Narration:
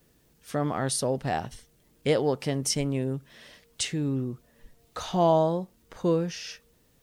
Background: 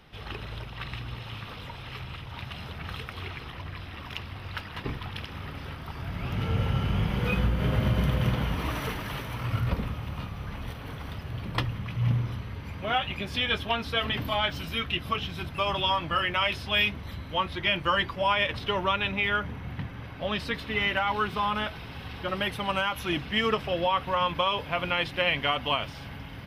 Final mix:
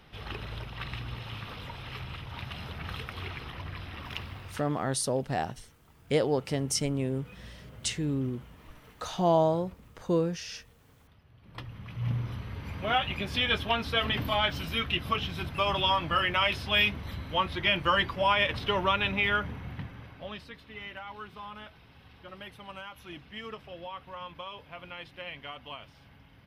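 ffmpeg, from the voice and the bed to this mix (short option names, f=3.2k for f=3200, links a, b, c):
-filter_complex "[0:a]adelay=4050,volume=-2dB[a];[1:a]volume=22dB,afade=t=out:st=4.23:d=0.57:silence=0.0794328,afade=t=in:st=11.41:d=1.36:silence=0.0707946,afade=t=out:st=19.27:d=1.22:silence=0.16788[b];[a][b]amix=inputs=2:normalize=0"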